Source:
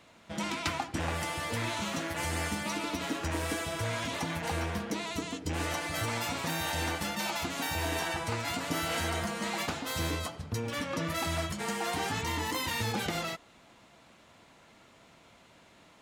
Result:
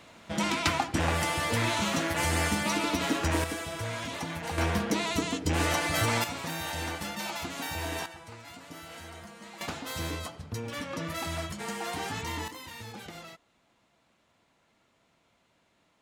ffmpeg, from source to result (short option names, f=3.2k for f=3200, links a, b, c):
-af "asetnsamples=n=441:p=0,asendcmd='3.44 volume volume -1.5dB;4.58 volume volume 6dB;6.24 volume volume -2dB;8.06 volume volume -13dB;9.61 volume volume -2dB;12.48 volume volume -11dB',volume=5.5dB"